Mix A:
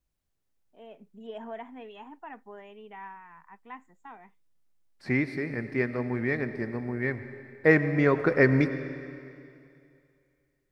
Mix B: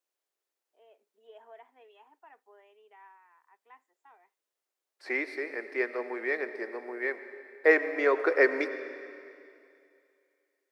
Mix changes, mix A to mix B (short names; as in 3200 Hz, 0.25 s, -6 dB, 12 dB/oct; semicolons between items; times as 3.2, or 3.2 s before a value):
first voice -11.5 dB; master: add steep high-pass 360 Hz 36 dB/oct